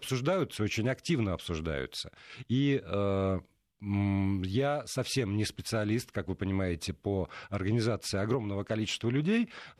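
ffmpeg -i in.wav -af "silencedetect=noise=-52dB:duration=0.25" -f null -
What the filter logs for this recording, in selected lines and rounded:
silence_start: 3.45
silence_end: 3.80 | silence_duration: 0.35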